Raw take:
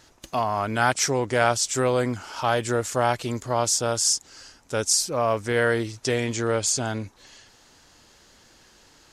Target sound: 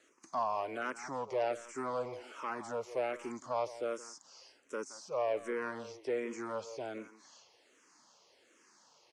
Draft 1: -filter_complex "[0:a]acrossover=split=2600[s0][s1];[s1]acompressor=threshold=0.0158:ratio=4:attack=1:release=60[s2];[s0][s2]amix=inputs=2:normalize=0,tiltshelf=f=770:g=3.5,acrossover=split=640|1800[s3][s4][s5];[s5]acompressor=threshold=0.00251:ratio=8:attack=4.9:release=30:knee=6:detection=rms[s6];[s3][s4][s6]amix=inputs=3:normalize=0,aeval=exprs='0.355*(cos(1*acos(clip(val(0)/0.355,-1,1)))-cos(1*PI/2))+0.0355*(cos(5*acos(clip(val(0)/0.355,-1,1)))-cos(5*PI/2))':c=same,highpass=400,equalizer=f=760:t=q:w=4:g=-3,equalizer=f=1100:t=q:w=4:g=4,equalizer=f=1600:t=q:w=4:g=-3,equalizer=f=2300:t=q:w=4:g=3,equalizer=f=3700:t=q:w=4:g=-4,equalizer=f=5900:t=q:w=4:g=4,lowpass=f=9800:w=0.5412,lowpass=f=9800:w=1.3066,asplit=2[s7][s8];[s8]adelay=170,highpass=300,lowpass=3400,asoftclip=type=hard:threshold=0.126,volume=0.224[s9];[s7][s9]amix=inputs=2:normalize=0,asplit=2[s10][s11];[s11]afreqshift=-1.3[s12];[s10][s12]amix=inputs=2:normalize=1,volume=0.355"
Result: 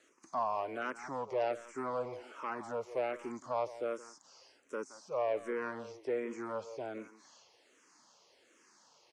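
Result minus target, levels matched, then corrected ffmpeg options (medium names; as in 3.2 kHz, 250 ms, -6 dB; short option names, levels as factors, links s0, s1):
compression: peak gain reduction +7 dB
-filter_complex "[0:a]acrossover=split=2600[s0][s1];[s1]acompressor=threshold=0.0158:ratio=4:attack=1:release=60[s2];[s0][s2]amix=inputs=2:normalize=0,tiltshelf=f=770:g=3.5,acrossover=split=640|1800[s3][s4][s5];[s5]acompressor=threshold=0.00631:ratio=8:attack=4.9:release=30:knee=6:detection=rms[s6];[s3][s4][s6]amix=inputs=3:normalize=0,aeval=exprs='0.355*(cos(1*acos(clip(val(0)/0.355,-1,1)))-cos(1*PI/2))+0.0355*(cos(5*acos(clip(val(0)/0.355,-1,1)))-cos(5*PI/2))':c=same,highpass=400,equalizer=f=760:t=q:w=4:g=-3,equalizer=f=1100:t=q:w=4:g=4,equalizer=f=1600:t=q:w=4:g=-3,equalizer=f=2300:t=q:w=4:g=3,equalizer=f=3700:t=q:w=4:g=-4,equalizer=f=5900:t=q:w=4:g=4,lowpass=f=9800:w=0.5412,lowpass=f=9800:w=1.3066,asplit=2[s7][s8];[s8]adelay=170,highpass=300,lowpass=3400,asoftclip=type=hard:threshold=0.126,volume=0.224[s9];[s7][s9]amix=inputs=2:normalize=0,asplit=2[s10][s11];[s11]afreqshift=-1.3[s12];[s10][s12]amix=inputs=2:normalize=1,volume=0.355"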